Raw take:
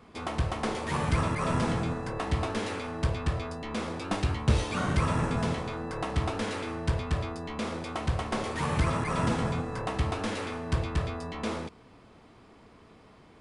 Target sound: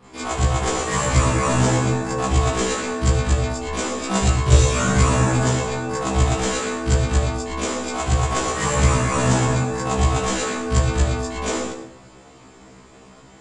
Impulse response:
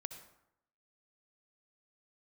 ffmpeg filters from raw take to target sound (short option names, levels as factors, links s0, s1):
-filter_complex "[0:a]asplit=2[s0][s1];[s1]lowpass=f=7300:t=q:w=9.6[s2];[1:a]atrim=start_sample=2205,adelay=41[s3];[s2][s3]afir=irnorm=-1:irlink=0,volume=2.37[s4];[s0][s4]amix=inputs=2:normalize=0,afftfilt=real='re*1.73*eq(mod(b,3),0)':imag='im*1.73*eq(mod(b,3),0)':win_size=2048:overlap=0.75,volume=1.78"